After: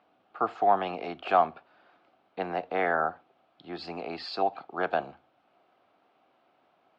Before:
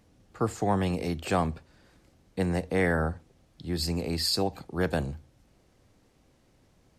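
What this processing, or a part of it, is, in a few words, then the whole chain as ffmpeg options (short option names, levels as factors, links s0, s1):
phone earpiece: -af "highpass=470,equalizer=f=500:t=q:w=4:g=-6,equalizer=f=710:t=q:w=4:g=9,equalizer=f=1300:t=q:w=4:g=6,equalizer=f=1900:t=q:w=4:g=-7,lowpass=f=3200:w=0.5412,lowpass=f=3200:w=1.3066,volume=1.26"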